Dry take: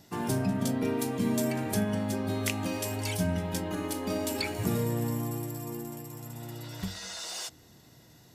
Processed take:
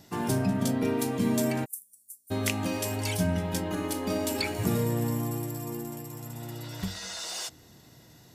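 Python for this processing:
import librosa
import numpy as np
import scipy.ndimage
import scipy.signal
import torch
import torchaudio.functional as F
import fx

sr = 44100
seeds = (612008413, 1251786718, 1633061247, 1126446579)

y = fx.cheby2_highpass(x, sr, hz=3000.0, order=4, stop_db=60, at=(1.64, 2.3), fade=0.02)
y = y * librosa.db_to_amplitude(2.0)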